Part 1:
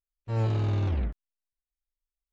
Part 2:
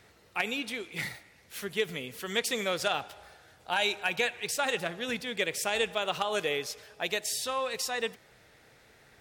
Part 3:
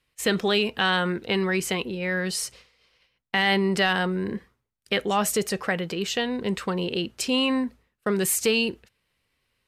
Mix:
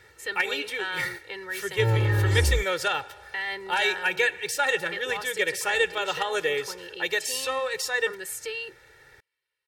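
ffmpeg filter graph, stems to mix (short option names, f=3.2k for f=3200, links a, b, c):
-filter_complex "[0:a]adelay=1500,volume=0.5dB[a];[1:a]volume=-0.5dB[b];[2:a]highpass=f=610:p=1,volume=-13.5dB[c];[a][b][c]amix=inputs=3:normalize=0,equalizer=f=1.7k:t=o:w=0.36:g=9,aecho=1:1:2.2:0.93"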